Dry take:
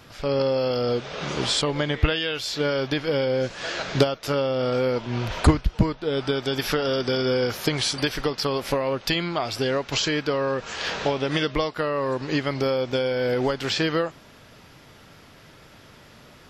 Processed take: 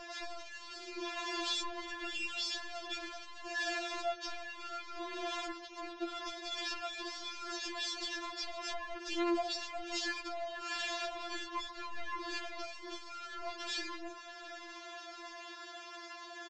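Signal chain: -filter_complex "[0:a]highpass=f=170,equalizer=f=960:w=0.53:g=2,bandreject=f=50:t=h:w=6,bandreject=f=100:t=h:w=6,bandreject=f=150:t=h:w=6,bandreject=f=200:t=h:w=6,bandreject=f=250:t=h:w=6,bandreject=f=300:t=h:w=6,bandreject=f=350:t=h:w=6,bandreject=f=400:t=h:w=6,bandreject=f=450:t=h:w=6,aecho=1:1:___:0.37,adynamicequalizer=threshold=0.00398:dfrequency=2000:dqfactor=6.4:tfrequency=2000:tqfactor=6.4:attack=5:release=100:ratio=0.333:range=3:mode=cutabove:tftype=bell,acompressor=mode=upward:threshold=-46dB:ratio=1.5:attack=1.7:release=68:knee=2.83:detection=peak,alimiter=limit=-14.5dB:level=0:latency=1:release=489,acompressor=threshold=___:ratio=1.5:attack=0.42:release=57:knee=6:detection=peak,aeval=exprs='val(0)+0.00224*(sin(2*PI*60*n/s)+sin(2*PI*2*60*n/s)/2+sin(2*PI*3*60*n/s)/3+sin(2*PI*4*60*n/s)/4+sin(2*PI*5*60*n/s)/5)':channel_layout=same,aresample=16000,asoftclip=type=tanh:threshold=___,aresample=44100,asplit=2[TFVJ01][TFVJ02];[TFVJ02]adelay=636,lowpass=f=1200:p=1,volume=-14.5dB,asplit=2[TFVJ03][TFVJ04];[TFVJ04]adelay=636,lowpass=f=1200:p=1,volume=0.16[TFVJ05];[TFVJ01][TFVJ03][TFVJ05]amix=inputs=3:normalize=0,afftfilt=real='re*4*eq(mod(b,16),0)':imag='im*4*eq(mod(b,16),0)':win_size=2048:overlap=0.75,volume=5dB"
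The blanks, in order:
1.8, -41dB, -36.5dB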